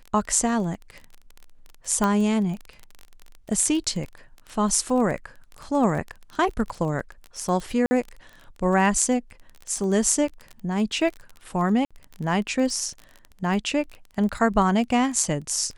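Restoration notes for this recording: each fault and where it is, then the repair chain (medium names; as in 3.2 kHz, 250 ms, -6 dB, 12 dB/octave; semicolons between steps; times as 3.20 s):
crackle 22 per s -30 dBFS
2.04 s: pop -10 dBFS
7.86–7.91 s: dropout 50 ms
11.85–11.91 s: dropout 56 ms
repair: de-click; interpolate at 7.86 s, 50 ms; interpolate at 11.85 s, 56 ms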